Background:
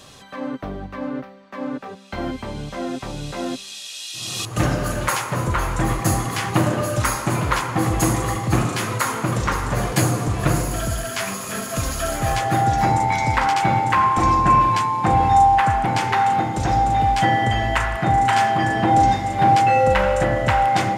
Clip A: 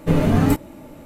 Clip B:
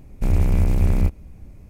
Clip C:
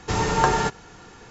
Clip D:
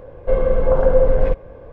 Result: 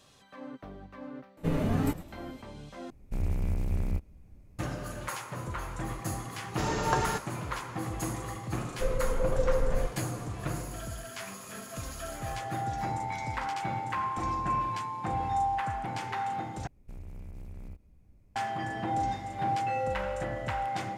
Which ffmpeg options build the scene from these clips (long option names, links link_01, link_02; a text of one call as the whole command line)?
ffmpeg -i bed.wav -i cue0.wav -i cue1.wav -i cue2.wav -i cue3.wav -filter_complex "[2:a]asplit=2[link_01][link_02];[0:a]volume=-15dB[link_03];[1:a]asplit=4[link_04][link_05][link_06][link_07];[link_05]adelay=106,afreqshift=-110,volume=-15dB[link_08];[link_06]adelay=212,afreqshift=-220,volume=-25.2dB[link_09];[link_07]adelay=318,afreqshift=-330,volume=-35.3dB[link_10];[link_04][link_08][link_09][link_10]amix=inputs=4:normalize=0[link_11];[4:a]equalizer=frequency=860:width=1.2:gain=-4.5[link_12];[link_02]acompressor=threshold=-22dB:ratio=6:attack=3.2:release=140:knee=1:detection=peak[link_13];[link_03]asplit=3[link_14][link_15][link_16];[link_14]atrim=end=2.904[link_17];[link_01]atrim=end=1.69,asetpts=PTS-STARTPTS,volume=-12dB[link_18];[link_15]atrim=start=4.586:end=16.674[link_19];[link_13]atrim=end=1.69,asetpts=PTS-STARTPTS,volume=-18dB[link_20];[link_16]atrim=start=18.356[link_21];[link_11]atrim=end=1.05,asetpts=PTS-STARTPTS,volume=-11.5dB,afade=type=in:duration=0.004:curve=hsin,afade=type=out:start_time=1.046:duration=0.004:curve=hsin,adelay=1370[link_22];[3:a]atrim=end=1.3,asetpts=PTS-STARTPTS,volume=-8.5dB,afade=type=in:duration=0.004:curve=hsin,afade=type=out:start_time=1.296:duration=0.004:curve=hsin,adelay=6490[link_23];[link_12]atrim=end=1.72,asetpts=PTS-STARTPTS,volume=-12dB,afade=type=in:duration=0.004:curve=hsin,afade=type=out:start_time=1.716:duration=0.004:curve=hsin,adelay=8530[link_24];[link_17][link_18]acrossfade=duration=0.004:curve1=hsin:curve2=hsin[link_25];[link_25][link_19]acrossfade=duration=0.004:curve1=hsin:curve2=hsin[link_26];[link_26][link_20]acrossfade=duration=0.004:curve1=hsin:curve2=hsin[link_27];[link_27][link_21]acrossfade=duration=0.004:curve1=hsin:curve2=hsin[link_28];[link_28][link_22][link_23][link_24]amix=inputs=4:normalize=0" out.wav